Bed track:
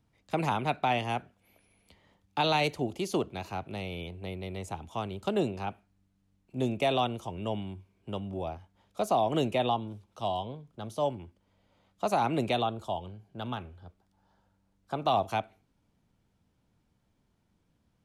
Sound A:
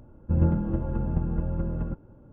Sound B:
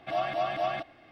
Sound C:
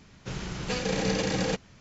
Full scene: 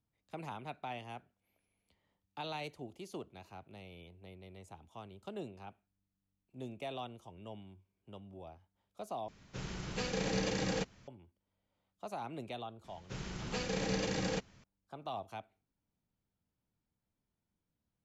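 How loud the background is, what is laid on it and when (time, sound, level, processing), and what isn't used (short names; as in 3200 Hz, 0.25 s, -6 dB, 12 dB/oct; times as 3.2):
bed track -15 dB
9.28 replace with C -7 dB
12.84 add C -7.5 dB
not used: A, B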